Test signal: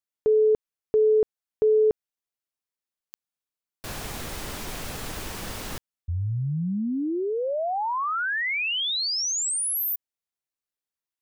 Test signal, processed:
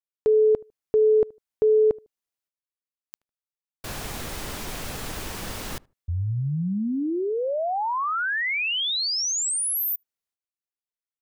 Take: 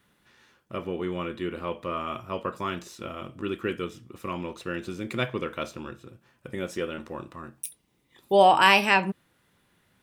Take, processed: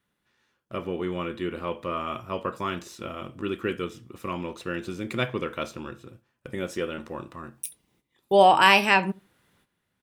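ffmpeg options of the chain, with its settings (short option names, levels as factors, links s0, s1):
-filter_complex "[0:a]agate=range=0.251:threshold=0.00794:ratio=16:release=410:detection=rms,asplit=2[s0][s1];[s1]adelay=76,lowpass=f=1300:p=1,volume=0.0668,asplit=2[s2][s3];[s3]adelay=76,lowpass=f=1300:p=1,volume=0.23[s4];[s2][s4]amix=inputs=2:normalize=0[s5];[s0][s5]amix=inputs=2:normalize=0,volume=1.12"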